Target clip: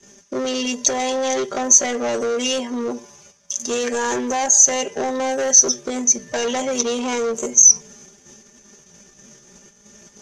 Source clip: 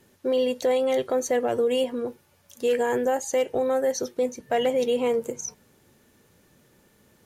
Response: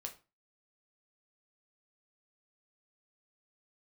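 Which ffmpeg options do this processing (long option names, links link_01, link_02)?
-filter_complex "[0:a]bandreject=frequency=4100:width=11,bandreject=frequency=144.7:width_type=h:width=4,bandreject=frequency=289.4:width_type=h:width=4,bandreject=frequency=434.1:width_type=h:width=4,bandreject=frequency=578.8:width_type=h:width=4,bandreject=frequency=723.5:width_type=h:width=4,bandreject=frequency=868.2:width_type=h:width=4,bandreject=frequency=1012.9:width_type=h:width=4,bandreject=frequency=1157.6:width_type=h:width=4,bandreject=frequency=1302.3:width_type=h:width=4,bandreject=frequency=1447:width_type=h:width=4,bandreject=frequency=1591.7:width_type=h:width=4,bandreject=frequency=1736.4:width_type=h:width=4,bandreject=frequency=1881.1:width_type=h:width=4,bandreject=frequency=2025.8:width_type=h:width=4,agate=range=-11dB:threshold=-59dB:ratio=16:detection=peak,aecho=1:1:5:0.81,asplit=2[link_01][link_02];[link_02]acompressor=threshold=-32dB:ratio=6,volume=1dB[link_03];[link_01][link_03]amix=inputs=2:normalize=0,asoftclip=type=hard:threshold=-22dB,atempo=0.71,acrossover=split=230|1600[link_04][link_05][link_06];[link_04]asoftclip=type=tanh:threshold=-38.5dB[link_07];[link_07][link_05][link_06]amix=inputs=3:normalize=0,lowpass=frequency=6200:width_type=q:width=11,alimiter=level_in=4dB:limit=-1dB:release=50:level=0:latency=1,volume=-1dB"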